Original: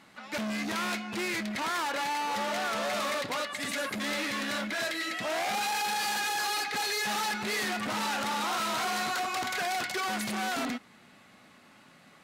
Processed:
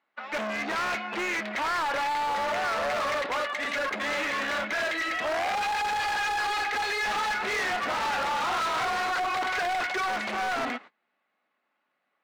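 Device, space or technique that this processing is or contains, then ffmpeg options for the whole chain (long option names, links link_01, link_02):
walkie-talkie: -filter_complex "[0:a]asettb=1/sr,asplit=3[link_01][link_02][link_03];[link_01]atrim=end=7.034[link_04];[link_02]atrim=start=7.03:end=8.88,asetpts=PTS-STARTPTS,afade=type=in:duration=0.004:curve=qsin,afade=type=out:start_time=1.846:duration=0.004:curve=qsin,asplit=2[link_05][link_06];[link_06]adelay=26,volume=-7dB[link_07];[link_05][link_07]amix=inputs=2:normalize=0,atrim=end_sample=81585[link_08];[link_03]atrim=start=8.876[link_09];[link_04][link_08]acrossfade=duration=0.004:curve1=hsin:curve2=qsin[link_10];[link_10][link_09]acrossfade=duration=0.004:curve1=qsin:curve2=hsin,highpass=450,lowpass=2500,asoftclip=type=hard:threshold=-33.5dB,agate=range=-26dB:threshold=-52dB:ratio=16:detection=peak,volume=8dB"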